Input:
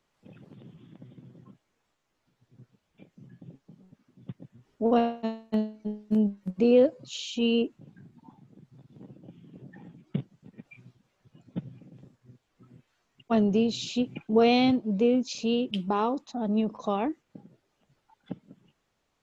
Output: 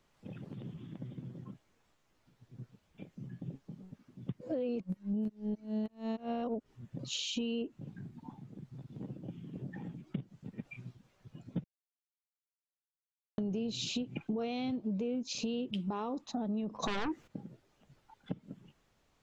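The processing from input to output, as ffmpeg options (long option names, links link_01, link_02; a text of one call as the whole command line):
ffmpeg -i in.wav -filter_complex "[0:a]asplit=3[link_01][link_02][link_03];[link_01]afade=type=out:start_time=16.82:duration=0.02[link_04];[link_02]aeval=exprs='0.178*sin(PI/2*4.47*val(0)/0.178)':channel_layout=same,afade=type=in:start_time=16.82:duration=0.02,afade=type=out:start_time=17.26:duration=0.02[link_05];[link_03]afade=type=in:start_time=17.26:duration=0.02[link_06];[link_04][link_05][link_06]amix=inputs=3:normalize=0,asplit=5[link_07][link_08][link_09][link_10][link_11];[link_07]atrim=end=4.412[link_12];[link_08]atrim=start=4.408:end=6.992,asetpts=PTS-STARTPTS,areverse[link_13];[link_09]atrim=start=6.988:end=11.64,asetpts=PTS-STARTPTS,afade=type=out:start_time=4.648:duration=0.004:curve=hsin[link_14];[link_10]atrim=start=11.64:end=13.38,asetpts=PTS-STARTPTS,volume=0[link_15];[link_11]atrim=start=13.38,asetpts=PTS-STARTPTS,afade=type=in:duration=0.004:curve=hsin[link_16];[link_12][link_13]acrossfade=duration=0.004:curve1=hsin:curve2=hsin[link_17];[link_14][link_15][link_16]concat=n=3:v=0:a=1[link_18];[link_17][link_18]acrossfade=duration=0.004:curve1=hsin:curve2=hsin,lowshelf=frequency=170:gain=6,alimiter=limit=-20.5dB:level=0:latency=1:release=192,acompressor=threshold=-36dB:ratio=4,volume=2dB" out.wav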